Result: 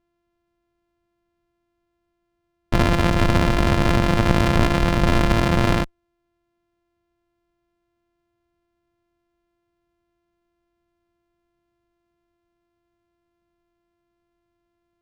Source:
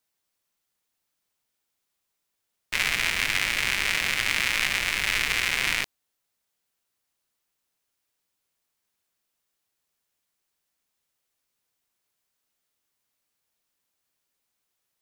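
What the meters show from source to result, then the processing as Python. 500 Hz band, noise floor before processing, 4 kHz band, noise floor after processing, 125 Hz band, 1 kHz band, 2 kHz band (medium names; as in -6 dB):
+20.0 dB, -80 dBFS, -3.5 dB, -75 dBFS, +24.5 dB, +12.5 dB, -3.5 dB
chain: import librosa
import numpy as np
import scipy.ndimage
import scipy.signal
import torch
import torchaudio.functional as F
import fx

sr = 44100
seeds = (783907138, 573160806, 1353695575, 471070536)

y = np.r_[np.sort(x[:len(x) // 128 * 128].reshape(-1, 128), axis=1).ravel(), x[len(x) // 128 * 128:]]
y = fx.cheby_harmonics(y, sr, harmonics=(4,), levels_db=(-12,), full_scale_db=-5.5)
y = fx.riaa(y, sr, side='playback')
y = y * librosa.db_to_amplitude(3.0)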